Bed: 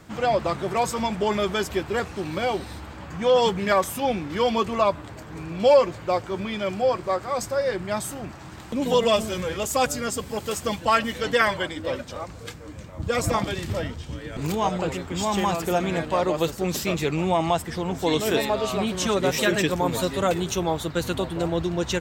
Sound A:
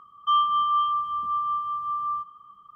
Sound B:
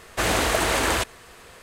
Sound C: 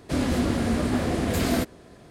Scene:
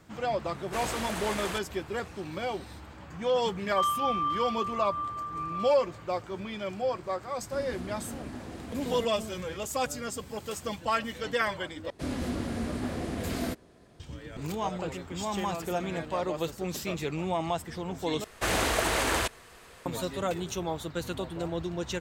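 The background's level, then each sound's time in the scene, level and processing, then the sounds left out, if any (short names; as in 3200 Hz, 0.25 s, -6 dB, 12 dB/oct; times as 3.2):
bed -8 dB
0.55 add B -13 dB
3.49 add A -7 dB
7.41 add C -17 dB
11.9 replace with C -8.5 dB
18.24 replace with B -5 dB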